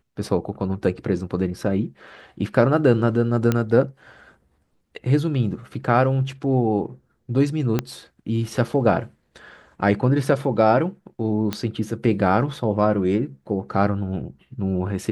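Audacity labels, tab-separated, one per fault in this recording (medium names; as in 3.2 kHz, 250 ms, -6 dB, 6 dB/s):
3.520000	3.520000	pop -8 dBFS
7.790000	7.790000	pop -8 dBFS
11.530000	11.530000	pop -10 dBFS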